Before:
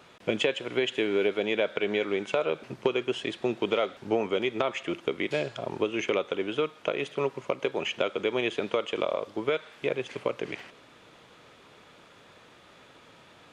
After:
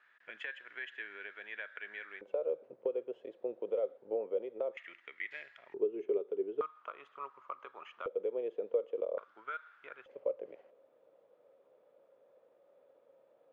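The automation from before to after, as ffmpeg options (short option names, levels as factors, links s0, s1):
-af "asetnsamples=n=441:p=0,asendcmd='2.21 bandpass f 510;4.77 bandpass f 1900;5.74 bandpass f 410;6.61 bandpass f 1200;8.06 bandpass f 490;9.18 bandpass f 1400;10.06 bandpass f 540',bandpass=f=1700:t=q:w=8.3:csg=0"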